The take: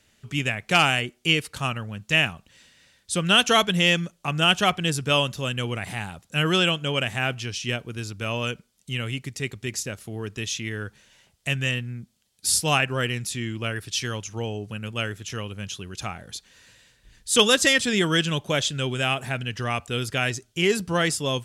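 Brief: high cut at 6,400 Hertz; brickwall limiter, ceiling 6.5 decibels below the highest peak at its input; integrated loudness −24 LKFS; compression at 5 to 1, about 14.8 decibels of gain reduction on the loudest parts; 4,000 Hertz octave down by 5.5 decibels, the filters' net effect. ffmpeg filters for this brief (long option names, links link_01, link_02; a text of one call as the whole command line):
ffmpeg -i in.wav -af "lowpass=6400,equalizer=frequency=4000:width_type=o:gain=-8,acompressor=threshold=-33dB:ratio=5,volume=14dB,alimiter=limit=-13dB:level=0:latency=1" out.wav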